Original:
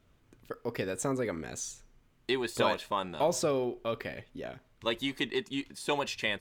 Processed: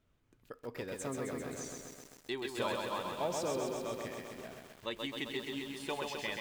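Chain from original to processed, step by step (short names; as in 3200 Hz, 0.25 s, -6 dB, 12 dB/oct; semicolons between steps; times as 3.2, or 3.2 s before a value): lo-fi delay 0.131 s, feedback 80%, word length 8-bit, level -3.5 dB; gain -8.5 dB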